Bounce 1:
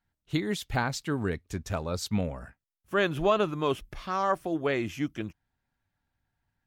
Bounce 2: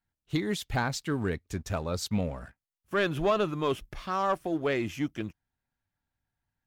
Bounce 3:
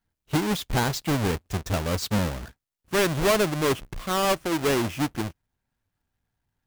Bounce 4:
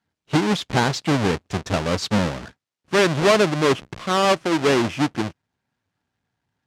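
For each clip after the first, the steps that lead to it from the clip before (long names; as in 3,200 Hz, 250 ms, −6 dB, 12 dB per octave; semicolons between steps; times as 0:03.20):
leveller curve on the samples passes 1; level −3.5 dB
each half-wave held at its own peak; level +1 dB
band-pass filter 120–6,200 Hz; level +5.5 dB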